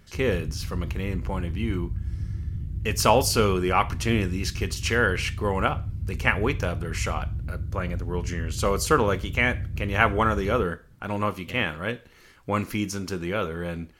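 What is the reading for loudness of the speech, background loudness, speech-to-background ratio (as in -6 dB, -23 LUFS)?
-26.5 LUFS, -33.0 LUFS, 6.5 dB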